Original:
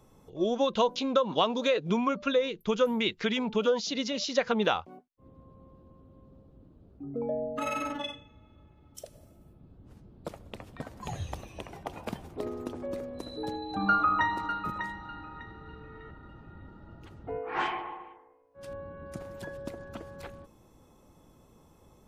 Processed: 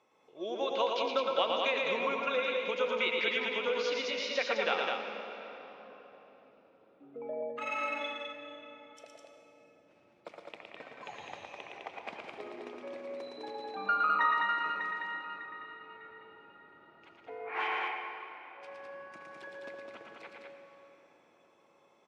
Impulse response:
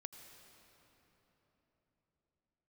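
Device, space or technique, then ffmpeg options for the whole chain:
station announcement: -filter_complex "[0:a]highpass=470,lowpass=4700,equalizer=frequency=2300:width_type=o:width=0.48:gain=9.5,aecho=1:1:113.7|207:0.631|0.631[link_01];[1:a]atrim=start_sample=2205[link_02];[link_01][link_02]afir=irnorm=-1:irlink=0,asettb=1/sr,asplit=3[link_03][link_04][link_05];[link_03]atrim=end=10.584[link_06];[link_04]atrim=start=10.58:end=12.26,asetpts=PTS-STARTPTS,afade=type=in:duration=0.004:curve=qsin,afade=type=out:start_time=1.676:duration=0.004:curve=qsin,lowpass=8400[link_07];[link_05]atrim=start=12.256[link_08];[link_06][link_07]acrossfade=duration=0.004:curve1=hsin:curve2=qsin[link_09];[link_09][link_08]acrossfade=duration=0.004:curve1=qsin:curve2=hsin"

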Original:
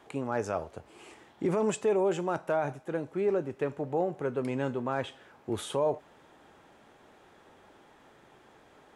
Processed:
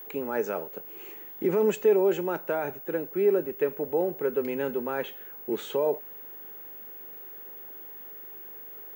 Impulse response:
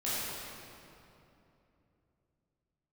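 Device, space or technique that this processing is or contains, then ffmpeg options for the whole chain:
old television with a line whistle: -af "highpass=frequency=190:width=0.5412,highpass=frequency=190:width=1.3066,equalizer=frequency=270:width_type=q:width=4:gain=-5,equalizer=frequency=430:width_type=q:width=4:gain=4,equalizer=frequency=690:width_type=q:width=4:gain=-8,equalizer=frequency=1100:width_type=q:width=4:gain=-8,equalizer=frequency=3500:width_type=q:width=4:gain=-4,equalizer=frequency=5200:width_type=q:width=4:gain=-8,lowpass=frequency=6600:width=0.5412,lowpass=frequency=6600:width=1.3066,aeval=exprs='val(0)+0.00631*sin(2*PI*15625*n/s)':channel_layout=same,volume=3.5dB"

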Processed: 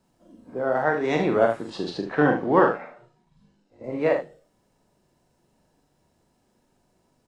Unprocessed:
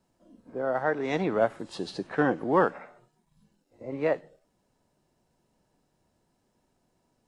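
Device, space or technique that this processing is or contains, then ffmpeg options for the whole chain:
slapback doubling: -filter_complex "[0:a]asplit=3[link_01][link_02][link_03];[link_02]adelay=40,volume=-5dB[link_04];[link_03]adelay=75,volume=-9dB[link_05];[link_01][link_04][link_05]amix=inputs=3:normalize=0,asettb=1/sr,asplit=3[link_06][link_07][link_08];[link_06]atrim=end=1.704[link_09];[link_07]atrim=start=1.7:end=3.84,asetpts=PTS-STARTPTS,afade=type=in:duration=0.004:curve=qsin,afade=type=out:start_time=2.136:duration=0.004:curve=qsin,lowpass=5300[link_10];[link_08]atrim=start=3.836[link_11];[link_09][link_10]acrossfade=duration=0.004:curve1=hsin:curve2=qsin[link_12];[link_12][link_11]acrossfade=duration=0.004:curve1=qsin:curve2=hsin,volume=3.5dB"

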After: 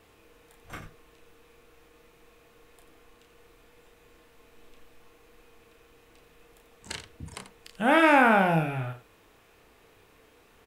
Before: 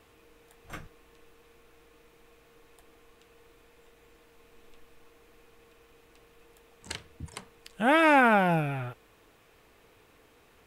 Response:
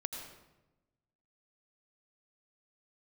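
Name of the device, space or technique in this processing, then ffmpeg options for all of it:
slapback doubling: -filter_complex "[0:a]asplit=3[link_01][link_02][link_03];[link_02]adelay=31,volume=-5.5dB[link_04];[link_03]adelay=89,volume=-11.5dB[link_05];[link_01][link_04][link_05]amix=inputs=3:normalize=0"

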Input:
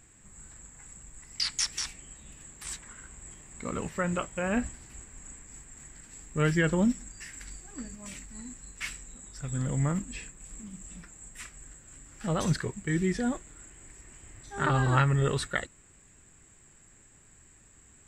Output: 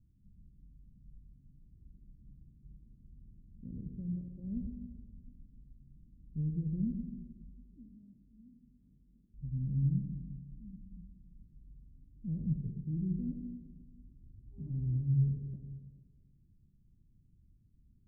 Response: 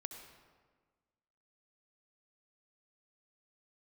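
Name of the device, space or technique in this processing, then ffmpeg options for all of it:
club heard from the street: -filter_complex "[0:a]asettb=1/sr,asplit=3[link_01][link_02][link_03];[link_01]atrim=end=7.494[link_04];[link_02]atrim=start=7.49:end=9.34,asetpts=PTS-STARTPTS,afade=type=in:duration=0.004:curve=qsin,afade=type=out:start_time=1.846:duration=0.004:curve=qsin,highpass=frequency=320:poles=1[link_05];[link_03]atrim=start=9.336[link_06];[link_04][link_05]acrossfade=duration=0.004:curve1=hsin:curve2=qsin[link_07];[link_07][link_06]acrossfade=duration=0.004:curve1=qsin:curve2=hsin,alimiter=limit=-19dB:level=0:latency=1:release=414,lowpass=frequency=220:width=0.5412,lowpass=frequency=220:width=1.3066[link_08];[1:a]atrim=start_sample=2205[link_09];[link_08][link_09]afir=irnorm=-1:irlink=0"

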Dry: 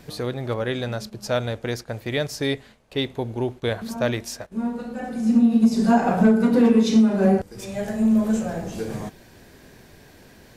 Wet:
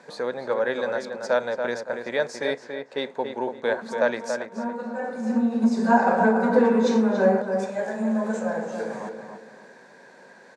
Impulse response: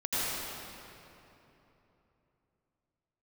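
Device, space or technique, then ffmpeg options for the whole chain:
television speaker: -filter_complex "[0:a]highpass=frequency=210:width=0.5412,highpass=frequency=210:width=1.3066,equalizer=frequency=310:width_type=q:width=4:gain=-8,equalizer=frequency=530:width_type=q:width=4:gain=9,equalizer=frequency=930:width_type=q:width=4:gain=10,equalizer=frequency=1600:width_type=q:width=4:gain=9,equalizer=frequency=3000:width_type=q:width=4:gain=-8,equalizer=frequency=5300:width_type=q:width=4:gain=-4,lowpass=frequency=8000:width=0.5412,lowpass=frequency=8000:width=1.3066,asplit=2[link_01][link_02];[link_02]adelay=282,lowpass=frequency=2600:poles=1,volume=-6dB,asplit=2[link_03][link_04];[link_04]adelay=282,lowpass=frequency=2600:poles=1,volume=0.32,asplit=2[link_05][link_06];[link_06]adelay=282,lowpass=frequency=2600:poles=1,volume=0.32,asplit=2[link_07][link_08];[link_08]adelay=282,lowpass=frequency=2600:poles=1,volume=0.32[link_09];[link_01][link_03][link_05][link_07][link_09]amix=inputs=5:normalize=0,volume=-3.5dB"

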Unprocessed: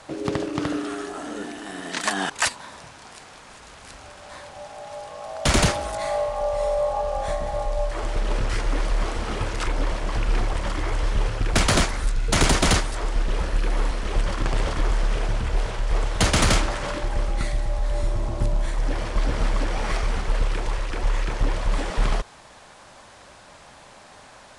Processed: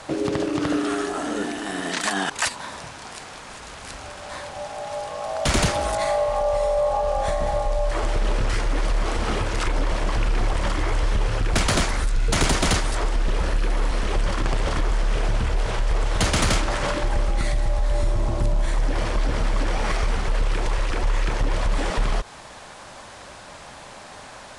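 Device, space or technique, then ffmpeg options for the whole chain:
stacked limiters: -af "alimiter=limit=-17.5dB:level=0:latency=1:release=68,alimiter=limit=-20dB:level=0:latency=1:release=165,volume=6dB"

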